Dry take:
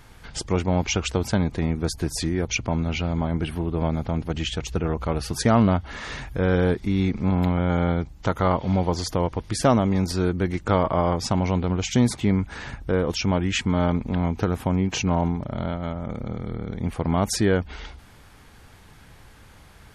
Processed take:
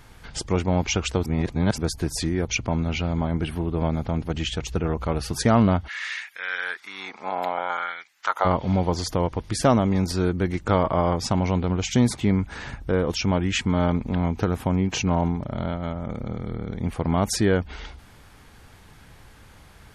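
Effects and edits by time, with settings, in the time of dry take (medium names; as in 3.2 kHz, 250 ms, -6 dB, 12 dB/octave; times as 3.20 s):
1.26–1.78 s: reverse
5.87–8.44 s: LFO high-pass sine 0.2 Hz -> 1.3 Hz 680–2000 Hz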